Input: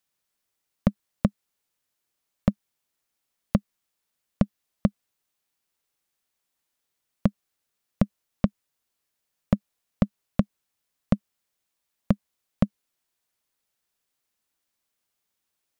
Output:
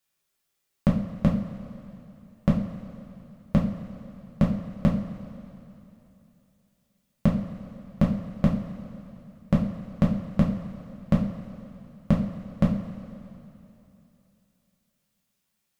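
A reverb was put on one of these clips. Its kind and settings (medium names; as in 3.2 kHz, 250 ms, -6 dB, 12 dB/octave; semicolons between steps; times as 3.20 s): two-slope reverb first 0.4 s, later 3 s, from -15 dB, DRR -4 dB; trim -2.5 dB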